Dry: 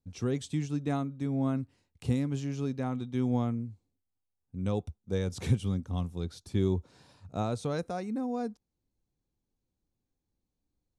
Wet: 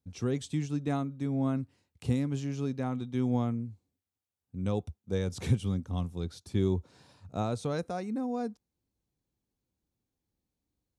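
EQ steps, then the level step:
high-pass filter 46 Hz
0.0 dB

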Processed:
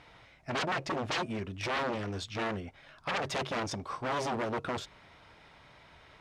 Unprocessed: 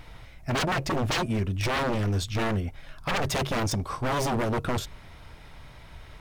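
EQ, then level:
high-pass filter 320 Hz 6 dB per octave
high-frequency loss of the air 72 metres
−3.5 dB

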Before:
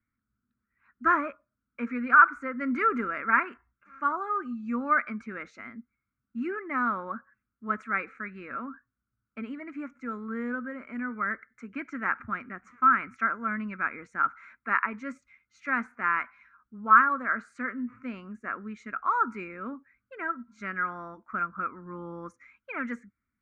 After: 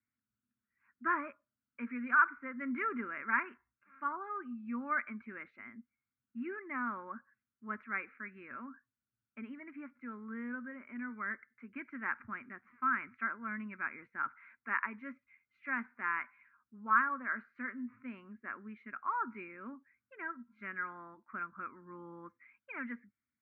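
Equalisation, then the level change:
loudspeaker in its box 130–2,600 Hz, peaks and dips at 180 Hz −7 dB, 300 Hz −4 dB, 480 Hz −9 dB, 690 Hz −8 dB, 1,300 Hz −7 dB
−5.0 dB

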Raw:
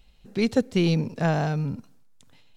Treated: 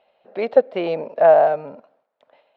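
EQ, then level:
high-pass with resonance 610 Hz, resonance Q 5.9
low-pass filter 3,100 Hz 6 dB per octave
high-frequency loss of the air 390 metres
+5.5 dB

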